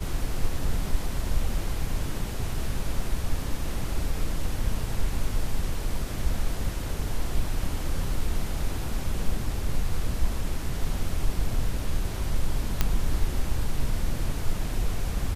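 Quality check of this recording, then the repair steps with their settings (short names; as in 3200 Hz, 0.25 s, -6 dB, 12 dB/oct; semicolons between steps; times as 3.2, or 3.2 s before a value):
12.81 pop -7 dBFS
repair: de-click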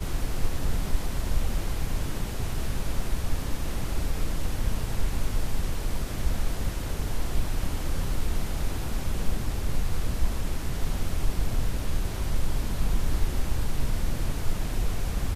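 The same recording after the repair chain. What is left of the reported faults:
none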